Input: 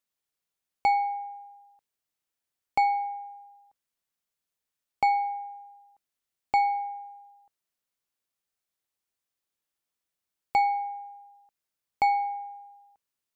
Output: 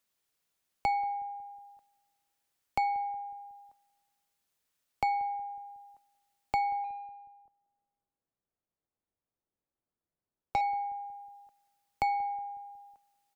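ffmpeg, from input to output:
-filter_complex "[0:a]acrossover=split=180[a][b];[b]acompressor=threshold=-54dB:ratio=1.5[c];[a][c]amix=inputs=2:normalize=0,asplit=2[d][e];[e]adelay=183,lowpass=f=900:p=1,volume=-18.5dB,asplit=2[f][g];[g]adelay=183,lowpass=f=900:p=1,volume=0.55,asplit=2[h][i];[i]adelay=183,lowpass=f=900:p=1,volume=0.55,asplit=2[j][k];[k]adelay=183,lowpass=f=900:p=1,volume=0.55,asplit=2[l][m];[m]adelay=183,lowpass=f=900:p=1,volume=0.55[n];[d][f][h][j][l][n]amix=inputs=6:normalize=0,asettb=1/sr,asplit=3[o][p][q];[o]atrim=end=6.844[r];[p]atrim=start=6.84:end=10.61,asetpts=PTS-STARTPTS,afade=t=in:d=0.004:c=qsin,afade=t=out:st=3.766:d=0.004:c=qsin,adynamicsmooth=sensitivity=5:basefreq=840[s];[q]atrim=start=10.606[t];[r][s]acrossfade=d=0.004:c1=hsin:c2=qsin[u];[u][t]acrossfade=d=0.004:c1=qsin:c2=hsin,volume=5.5dB"

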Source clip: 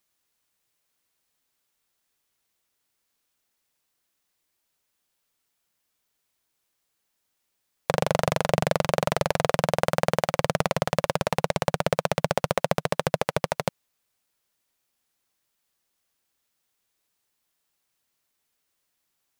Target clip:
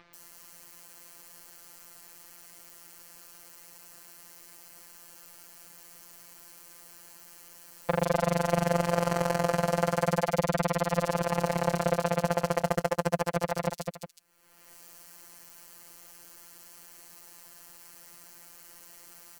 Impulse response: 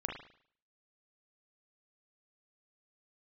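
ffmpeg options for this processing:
-filter_complex "[0:a]equalizer=f=3.3k:w=2.1:g=-4.5,asplit=2[a][b];[b]aecho=0:1:207|363:0.447|0.141[c];[a][c]amix=inputs=2:normalize=0,acompressor=mode=upward:threshold=-24dB:ratio=2.5,afftfilt=real='hypot(re,im)*cos(PI*b)':imag='0':win_size=1024:overlap=0.75,acrossover=split=3500[d][e];[e]adelay=140[f];[d][f]amix=inputs=2:normalize=0"

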